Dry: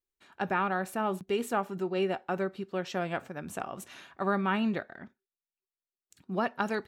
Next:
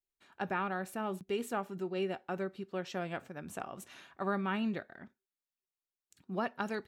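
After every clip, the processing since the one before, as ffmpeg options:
ffmpeg -i in.wav -af "adynamicequalizer=threshold=0.00794:dfrequency=950:dqfactor=0.88:tfrequency=950:tqfactor=0.88:attack=5:release=100:ratio=0.375:range=2.5:mode=cutabove:tftype=bell,volume=-4.5dB" out.wav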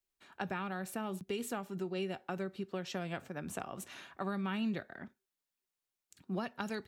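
ffmpeg -i in.wav -filter_complex "[0:a]acrossover=split=180|3000[link_01][link_02][link_03];[link_02]acompressor=threshold=-40dB:ratio=6[link_04];[link_01][link_04][link_03]amix=inputs=3:normalize=0,volume=3.5dB" out.wav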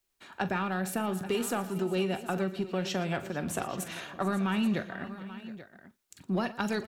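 ffmpeg -i in.wav -filter_complex "[0:a]asplit=2[link_01][link_02];[link_02]asoftclip=type=tanh:threshold=-37.5dB,volume=-5dB[link_03];[link_01][link_03]amix=inputs=2:normalize=0,aecho=1:1:43|117|446|719|834:0.2|0.126|0.119|0.106|0.178,volume=5dB" out.wav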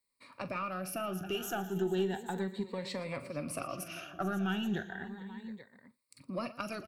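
ffmpeg -i in.wav -af "afftfilt=real='re*pow(10,16/40*sin(2*PI*(0.97*log(max(b,1)*sr/1024/100)/log(2)-(0.34)*(pts-256)/sr)))':imag='im*pow(10,16/40*sin(2*PI*(0.97*log(max(b,1)*sr/1024/100)/log(2)-(0.34)*(pts-256)/sr)))':win_size=1024:overlap=0.75,aeval=exprs='0.224*(cos(1*acos(clip(val(0)/0.224,-1,1)))-cos(1*PI/2))+0.00631*(cos(6*acos(clip(val(0)/0.224,-1,1)))-cos(6*PI/2))+0.00251*(cos(8*acos(clip(val(0)/0.224,-1,1)))-cos(8*PI/2))':channel_layout=same,volume=-7.5dB" out.wav

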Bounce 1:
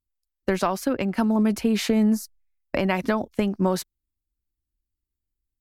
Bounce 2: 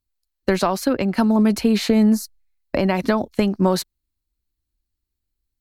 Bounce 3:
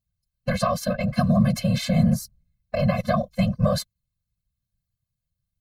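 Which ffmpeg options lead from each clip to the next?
ffmpeg -i in.wav -filter_complex "[0:a]equalizer=frequency=4200:width=7.3:gain=8.5,acrossover=split=910[link_01][link_02];[link_02]alimiter=limit=-20.5dB:level=0:latency=1:release=96[link_03];[link_01][link_03]amix=inputs=2:normalize=0,volume=4.5dB" out.wav
ffmpeg -i in.wav -af "afftfilt=real='hypot(re,im)*cos(2*PI*random(0))':imag='hypot(re,im)*sin(2*PI*random(1))':win_size=512:overlap=0.75,afftfilt=real='re*eq(mod(floor(b*sr/1024/250),2),0)':imag='im*eq(mod(floor(b*sr/1024/250),2),0)':win_size=1024:overlap=0.75,volume=5.5dB" out.wav

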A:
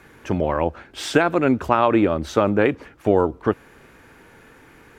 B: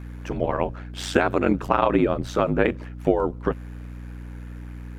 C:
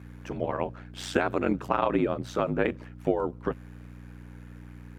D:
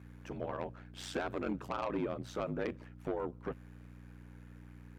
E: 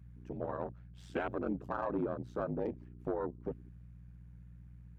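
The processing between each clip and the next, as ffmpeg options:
ffmpeg -i in.wav -af "aeval=exprs='val(0)*sin(2*PI*46*n/s)':channel_layout=same,aeval=exprs='val(0)+0.0178*(sin(2*PI*60*n/s)+sin(2*PI*2*60*n/s)/2+sin(2*PI*3*60*n/s)/3+sin(2*PI*4*60*n/s)/4+sin(2*PI*5*60*n/s)/5)':channel_layout=same" out.wav
ffmpeg -i in.wav -af "highpass=73,volume=-5.5dB" out.wav
ffmpeg -i in.wav -af "asoftclip=type=tanh:threshold=-20dB,volume=-7.5dB" out.wav
ffmpeg -i in.wav -af "afwtdn=0.01,volume=1dB" out.wav

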